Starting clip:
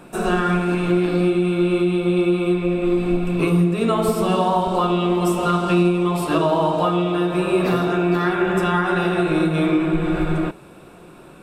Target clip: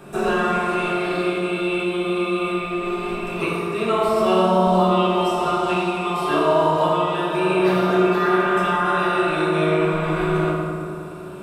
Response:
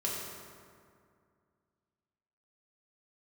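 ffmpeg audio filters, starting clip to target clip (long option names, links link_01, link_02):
-filter_complex "[0:a]acrossover=split=540|5300[link_01][link_02][link_03];[link_01]acompressor=threshold=-29dB:ratio=4[link_04];[link_02]acompressor=threshold=-23dB:ratio=4[link_05];[link_03]acompressor=threshold=-51dB:ratio=4[link_06];[link_04][link_05][link_06]amix=inputs=3:normalize=0[link_07];[1:a]atrim=start_sample=2205[link_08];[link_07][link_08]afir=irnorm=-1:irlink=0"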